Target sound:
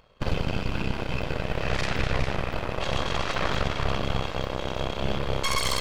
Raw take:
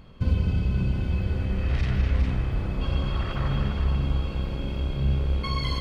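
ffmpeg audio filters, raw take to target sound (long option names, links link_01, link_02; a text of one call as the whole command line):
ffmpeg -i in.wav -af "lowshelf=frequency=380:width_type=q:width=1.5:gain=-10,aeval=exprs='0.112*(cos(1*acos(clip(val(0)/0.112,-1,1)))-cos(1*PI/2))+0.00501*(cos(3*acos(clip(val(0)/0.112,-1,1)))-cos(3*PI/2))+0.00398*(cos(5*acos(clip(val(0)/0.112,-1,1)))-cos(5*PI/2))+0.0447*(cos(6*acos(clip(val(0)/0.112,-1,1)))-cos(6*PI/2))+0.01*(cos(7*acos(clip(val(0)/0.112,-1,1)))-cos(7*PI/2))':channel_layout=same,volume=2.5dB" out.wav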